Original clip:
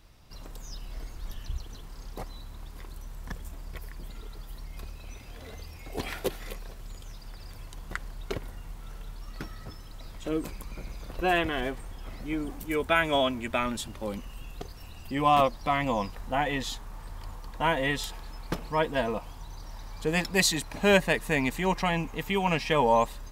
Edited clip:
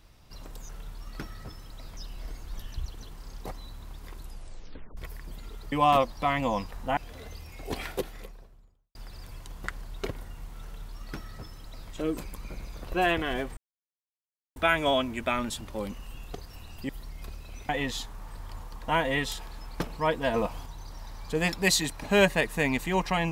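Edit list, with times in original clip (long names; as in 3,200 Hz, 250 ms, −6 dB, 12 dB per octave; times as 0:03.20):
0:02.92: tape stop 0.77 s
0:04.44–0:05.24: swap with 0:15.16–0:16.41
0:06.00–0:07.22: fade out and dull
0:08.90–0:10.18: duplicate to 0:00.69
0:11.84–0:12.83: silence
0:19.06–0:19.38: clip gain +4 dB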